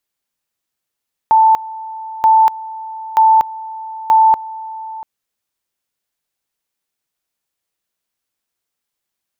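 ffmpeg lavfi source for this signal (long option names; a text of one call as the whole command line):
ffmpeg -f lavfi -i "aevalsrc='pow(10,(-6-19*gte(mod(t,0.93),0.24))/20)*sin(2*PI*884*t)':duration=3.72:sample_rate=44100" out.wav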